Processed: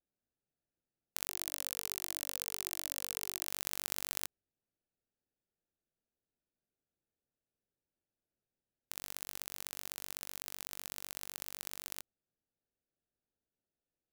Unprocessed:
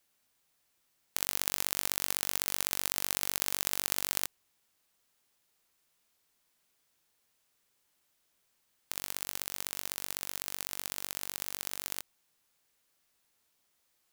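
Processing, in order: Wiener smoothing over 41 samples; 1.27–3.47 cascading phaser falling 1.5 Hz; gain -6 dB

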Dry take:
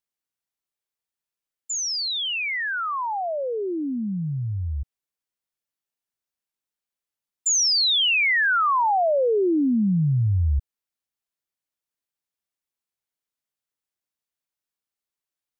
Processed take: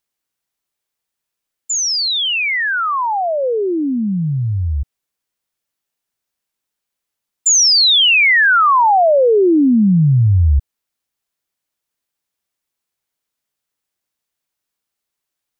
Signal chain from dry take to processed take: 3.42–4.75 synth low-pass 1400 Hz -> 5400 Hz, resonance Q 6.9; gain +9 dB

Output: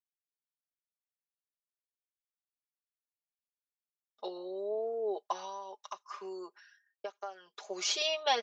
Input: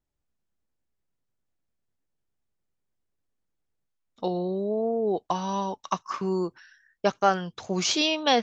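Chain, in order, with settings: expander -54 dBFS; HPF 430 Hz 24 dB/oct; comb 4.9 ms, depth 83%; 5.42–7.55 compressor 6:1, threshold -31 dBFS, peak gain reduction 17.5 dB; gain -8.5 dB

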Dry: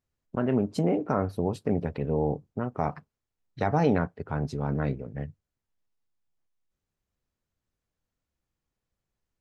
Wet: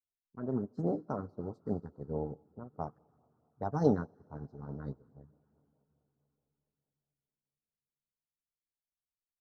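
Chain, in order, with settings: Chebyshev band-stop 1300–4900 Hz, order 2; low-pass opened by the level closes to 340 Hz, open at -22 dBFS; plate-style reverb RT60 4.2 s, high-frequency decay 0.75×, pre-delay 0.105 s, DRR 12.5 dB; LFO notch sine 4.7 Hz 560–2100 Hz; upward expander 2.5:1, over -37 dBFS

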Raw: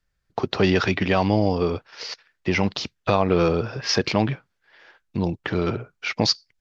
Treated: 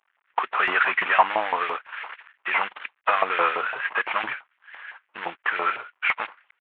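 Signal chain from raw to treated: CVSD 16 kbps; LFO high-pass saw up 5.9 Hz 860–1900 Hz; gain +5.5 dB

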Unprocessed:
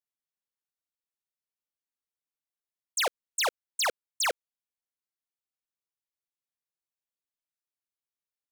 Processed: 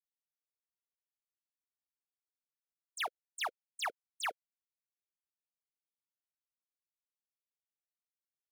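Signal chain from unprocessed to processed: per-bin expansion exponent 2; LPF 1900 Hz 6 dB/oct; tilt +2.5 dB/oct; level quantiser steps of 10 dB; notch comb 520 Hz; gain -2.5 dB

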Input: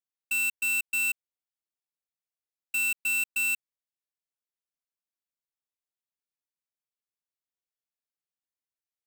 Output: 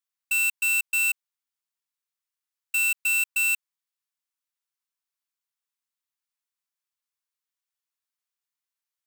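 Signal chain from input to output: Chebyshev high-pass 990 Hz, order 3; gain +4.5 dB

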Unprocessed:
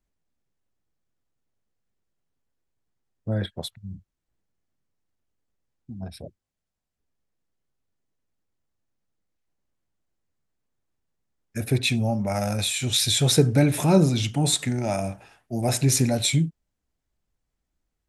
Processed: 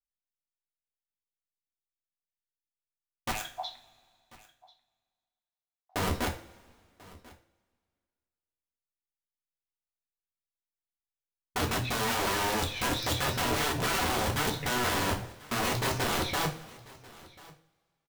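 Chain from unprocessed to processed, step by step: rattling part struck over -22 dBFS, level -11 dBFS; steep low-pass 6300 Hz 96 dB/oct; gate -45 dBFS, range -48 dB; 3.31–5.96 steep high-pass 680 Hz 96 dB/oct; tilt -4.5 dB/oct; compressor 5:1, threshold -25 dBFS, peak gain reduction 19.5 dB; wrapped overs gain 28.5 dB; echo 1.04 s -22 dB; two-slope reverb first 0.32 s, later 2 s, from -22 dB, DRR 1.5 dB; gain +2.5 dB

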